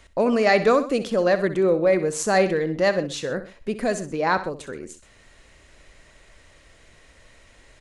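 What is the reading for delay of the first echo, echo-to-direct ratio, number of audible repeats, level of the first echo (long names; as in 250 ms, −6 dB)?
63 ms, −12.0 dB, 2, −13.0 dB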